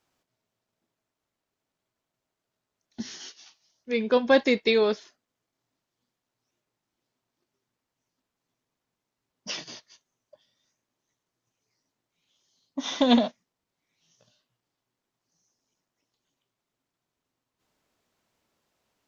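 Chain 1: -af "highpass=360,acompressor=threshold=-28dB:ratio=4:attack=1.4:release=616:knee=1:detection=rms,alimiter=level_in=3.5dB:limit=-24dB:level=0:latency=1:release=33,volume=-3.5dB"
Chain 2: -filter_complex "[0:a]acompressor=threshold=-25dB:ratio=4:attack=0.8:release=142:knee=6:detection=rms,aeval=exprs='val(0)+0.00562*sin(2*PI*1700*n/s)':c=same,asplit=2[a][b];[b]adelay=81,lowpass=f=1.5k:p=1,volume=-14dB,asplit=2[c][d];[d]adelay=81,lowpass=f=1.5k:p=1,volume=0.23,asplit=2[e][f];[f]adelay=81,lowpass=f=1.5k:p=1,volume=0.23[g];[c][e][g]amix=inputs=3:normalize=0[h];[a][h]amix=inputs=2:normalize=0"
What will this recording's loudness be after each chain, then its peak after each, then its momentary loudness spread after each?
-39.0, -39.5 LUFS; -27.5, -19.0 dBFS; 18, 15 LU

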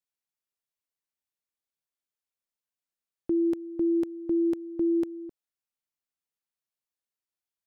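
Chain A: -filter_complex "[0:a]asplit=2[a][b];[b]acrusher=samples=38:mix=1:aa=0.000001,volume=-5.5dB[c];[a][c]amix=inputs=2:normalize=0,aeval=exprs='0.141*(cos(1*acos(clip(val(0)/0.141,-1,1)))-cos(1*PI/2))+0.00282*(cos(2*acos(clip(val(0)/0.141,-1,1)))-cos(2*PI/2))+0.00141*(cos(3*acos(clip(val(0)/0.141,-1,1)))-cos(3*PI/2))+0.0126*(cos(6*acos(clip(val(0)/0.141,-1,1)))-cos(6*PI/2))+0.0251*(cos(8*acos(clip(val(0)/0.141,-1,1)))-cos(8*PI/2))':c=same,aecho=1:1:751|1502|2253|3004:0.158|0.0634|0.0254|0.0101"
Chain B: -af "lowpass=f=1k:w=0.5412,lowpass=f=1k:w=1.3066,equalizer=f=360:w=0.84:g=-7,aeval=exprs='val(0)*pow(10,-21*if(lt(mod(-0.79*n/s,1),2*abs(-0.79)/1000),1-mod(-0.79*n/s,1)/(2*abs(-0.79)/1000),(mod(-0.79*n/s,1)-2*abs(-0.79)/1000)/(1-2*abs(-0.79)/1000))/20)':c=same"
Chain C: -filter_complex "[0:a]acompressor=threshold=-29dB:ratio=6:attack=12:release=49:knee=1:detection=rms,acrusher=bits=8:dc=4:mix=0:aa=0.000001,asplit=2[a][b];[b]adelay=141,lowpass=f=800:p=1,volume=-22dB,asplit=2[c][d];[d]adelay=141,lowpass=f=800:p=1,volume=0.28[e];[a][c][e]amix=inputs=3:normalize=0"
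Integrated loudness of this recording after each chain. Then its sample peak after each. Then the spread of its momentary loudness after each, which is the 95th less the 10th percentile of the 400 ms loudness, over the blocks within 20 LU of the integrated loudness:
-25.0, -40.5, -33.5 LUFS; -15.0, -25.0, -21.0 dBFS; 17, 16, 9 LU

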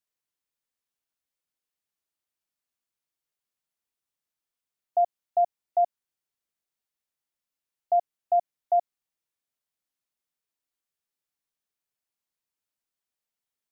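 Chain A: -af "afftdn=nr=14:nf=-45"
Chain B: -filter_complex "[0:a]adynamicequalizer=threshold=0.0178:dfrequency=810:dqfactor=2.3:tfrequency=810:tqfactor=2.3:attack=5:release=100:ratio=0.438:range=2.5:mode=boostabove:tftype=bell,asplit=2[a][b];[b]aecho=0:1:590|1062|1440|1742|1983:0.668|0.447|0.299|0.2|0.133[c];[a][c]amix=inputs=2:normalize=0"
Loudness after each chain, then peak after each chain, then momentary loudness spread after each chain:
-27.5, -25.5 LUFS; -16.5, -12.5 dBFS; 0, 14 LU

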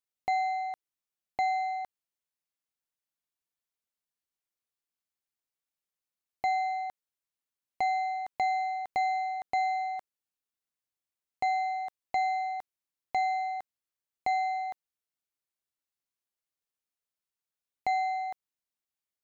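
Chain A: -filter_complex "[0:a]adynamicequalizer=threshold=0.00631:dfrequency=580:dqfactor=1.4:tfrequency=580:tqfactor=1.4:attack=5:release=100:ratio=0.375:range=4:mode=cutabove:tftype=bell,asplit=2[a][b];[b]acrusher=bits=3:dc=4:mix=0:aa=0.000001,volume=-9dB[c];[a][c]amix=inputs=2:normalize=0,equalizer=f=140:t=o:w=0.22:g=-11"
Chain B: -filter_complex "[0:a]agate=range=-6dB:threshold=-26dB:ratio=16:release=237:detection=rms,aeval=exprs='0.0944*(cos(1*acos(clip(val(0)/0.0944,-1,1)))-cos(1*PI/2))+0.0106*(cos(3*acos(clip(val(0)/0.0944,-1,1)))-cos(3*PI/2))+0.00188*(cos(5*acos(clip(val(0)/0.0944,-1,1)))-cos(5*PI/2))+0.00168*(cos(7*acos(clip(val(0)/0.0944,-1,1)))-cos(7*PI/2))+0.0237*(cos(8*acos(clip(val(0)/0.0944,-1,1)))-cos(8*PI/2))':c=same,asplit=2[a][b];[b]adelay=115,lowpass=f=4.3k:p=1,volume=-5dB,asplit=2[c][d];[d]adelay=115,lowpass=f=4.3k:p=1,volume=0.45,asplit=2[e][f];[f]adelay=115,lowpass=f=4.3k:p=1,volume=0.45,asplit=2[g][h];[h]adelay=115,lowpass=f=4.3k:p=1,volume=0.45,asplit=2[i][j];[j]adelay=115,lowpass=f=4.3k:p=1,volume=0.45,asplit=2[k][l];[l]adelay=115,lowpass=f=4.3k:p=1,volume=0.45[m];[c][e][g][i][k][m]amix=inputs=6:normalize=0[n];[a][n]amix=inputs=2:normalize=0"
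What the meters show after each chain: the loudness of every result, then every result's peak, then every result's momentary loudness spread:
-31.0, -33.0 LUFS; -17.0, -16.5 dBFS; 11, 16 LU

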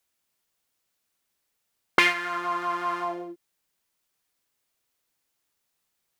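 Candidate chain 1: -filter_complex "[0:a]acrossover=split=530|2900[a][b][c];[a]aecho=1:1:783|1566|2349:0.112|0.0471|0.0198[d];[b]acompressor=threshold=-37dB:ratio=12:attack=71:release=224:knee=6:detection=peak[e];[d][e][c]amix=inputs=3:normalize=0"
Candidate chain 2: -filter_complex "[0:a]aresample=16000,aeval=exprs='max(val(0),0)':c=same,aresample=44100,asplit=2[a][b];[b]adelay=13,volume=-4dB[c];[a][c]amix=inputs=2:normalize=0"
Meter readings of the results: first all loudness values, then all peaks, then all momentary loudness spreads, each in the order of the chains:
-31.5, -29.5 LUFS; -6.0, -3.0 dBFS; 13, 14 LU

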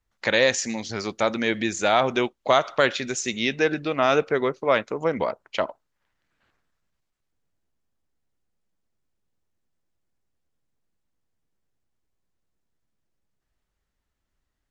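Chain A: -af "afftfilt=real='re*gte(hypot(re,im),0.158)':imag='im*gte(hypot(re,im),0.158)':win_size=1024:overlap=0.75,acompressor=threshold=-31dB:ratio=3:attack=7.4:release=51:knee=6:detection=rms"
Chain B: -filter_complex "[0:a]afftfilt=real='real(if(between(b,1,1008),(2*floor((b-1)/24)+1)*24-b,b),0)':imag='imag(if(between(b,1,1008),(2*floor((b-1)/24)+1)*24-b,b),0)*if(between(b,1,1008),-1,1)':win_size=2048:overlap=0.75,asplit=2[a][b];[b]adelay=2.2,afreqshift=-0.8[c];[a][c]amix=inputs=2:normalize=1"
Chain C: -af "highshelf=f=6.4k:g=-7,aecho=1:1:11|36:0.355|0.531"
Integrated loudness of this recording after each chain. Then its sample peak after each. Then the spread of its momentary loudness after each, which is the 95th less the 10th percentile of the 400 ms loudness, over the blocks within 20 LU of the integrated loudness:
-33.5, -26.5, -22.0 LUFS; -17.5, -9.0, -3.5 dBFS; 5, 9, 8 LU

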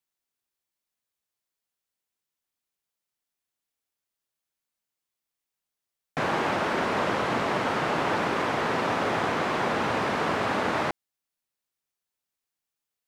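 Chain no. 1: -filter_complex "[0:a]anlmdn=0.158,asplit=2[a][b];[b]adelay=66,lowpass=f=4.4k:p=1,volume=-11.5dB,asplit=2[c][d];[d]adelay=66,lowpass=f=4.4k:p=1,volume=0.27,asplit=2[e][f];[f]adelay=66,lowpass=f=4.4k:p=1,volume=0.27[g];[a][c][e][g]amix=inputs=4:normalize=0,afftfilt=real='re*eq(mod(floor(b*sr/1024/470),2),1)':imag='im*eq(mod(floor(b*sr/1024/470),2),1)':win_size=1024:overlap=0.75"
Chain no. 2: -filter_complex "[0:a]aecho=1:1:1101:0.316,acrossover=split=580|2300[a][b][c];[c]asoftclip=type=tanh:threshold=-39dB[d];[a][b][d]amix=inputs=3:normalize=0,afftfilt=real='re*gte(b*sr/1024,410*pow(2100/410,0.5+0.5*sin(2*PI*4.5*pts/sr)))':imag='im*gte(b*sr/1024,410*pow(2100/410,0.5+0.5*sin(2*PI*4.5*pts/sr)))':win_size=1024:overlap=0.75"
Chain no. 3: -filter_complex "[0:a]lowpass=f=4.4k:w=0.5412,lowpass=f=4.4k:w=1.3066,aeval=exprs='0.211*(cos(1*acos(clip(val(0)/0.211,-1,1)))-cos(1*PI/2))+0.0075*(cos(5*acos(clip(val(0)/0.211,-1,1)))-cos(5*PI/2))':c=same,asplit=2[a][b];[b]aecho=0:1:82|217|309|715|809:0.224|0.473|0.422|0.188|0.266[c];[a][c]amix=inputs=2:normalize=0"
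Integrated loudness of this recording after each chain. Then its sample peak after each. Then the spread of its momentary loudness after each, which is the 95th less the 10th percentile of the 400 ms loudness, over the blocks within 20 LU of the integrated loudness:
-29.5, -30.5, -24.0 LUFS; -16.5, -14.5, -10.5 dBFS; 2, 11, 10 LU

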